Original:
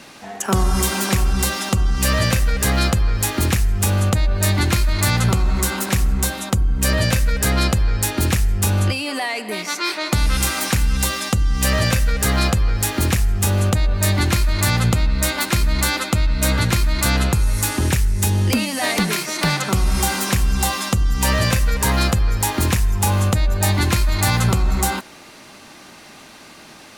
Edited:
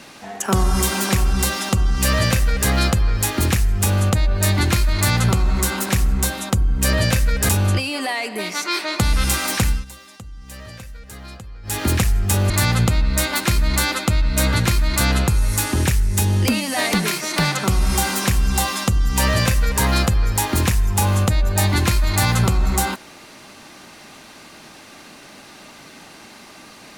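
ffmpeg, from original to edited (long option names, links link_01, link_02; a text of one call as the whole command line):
ffmpeg -i in.wav -filter_complex "[0:a]asplit=5[link_01][link_02][link_03][link_04][link_05];[link_01]atrim=end=7.492[link_06];[link_02]atrim=start=8.618:end=10.98,asetpts=PTS-STARTPTS,afade=type=out:start_time=2.202:duration=0.16:silence=0.105925[link_07];[link_03]atrim=start=10.98:end=12.76,asetpts=PTS-STARTPTS,volume=-19.5dB[link_08];[link_04]atrim=start=12.76:end=13.632,asetpts=PTS-STARTPTS,afade=type=in:duration=0.16:silence=0.105925[link_09];[link_05]atrim=start=14.548[link_10];[link_07][link_08][link_09]concat=n=3:v=0:a=1[link_11];[link_06][link_11]acrossfade=duration=0.004:curve1=hsin:curve2=hsin[link_12];[link_12][link_10]acrossfade=duration=0.004:curve1=hsin:curve2=hsin" out.wav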